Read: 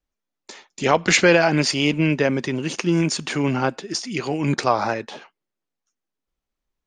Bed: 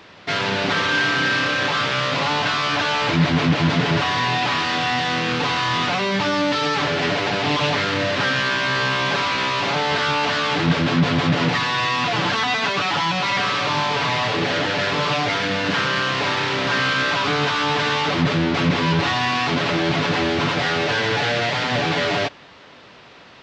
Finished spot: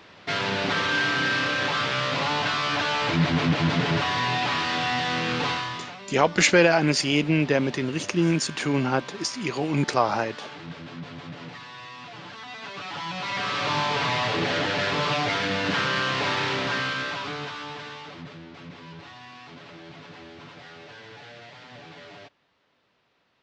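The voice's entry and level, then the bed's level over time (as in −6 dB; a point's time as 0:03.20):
5.30 s, −2.5 dB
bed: 0:05.50 −4.5 dB
0:05.98 −20.5 dB
0:12.35 −20.5 dB
0:13.71 −4 dB
0:16.50 −4 dB
0:18.45 −24 dB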